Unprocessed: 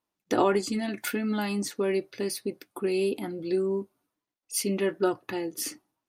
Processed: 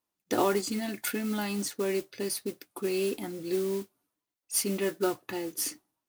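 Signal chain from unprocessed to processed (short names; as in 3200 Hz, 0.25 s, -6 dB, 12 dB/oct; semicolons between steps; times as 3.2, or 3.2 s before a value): high shelf 5900 Hz +6.5 dB; modulation noise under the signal 16 dB; gain -3 dB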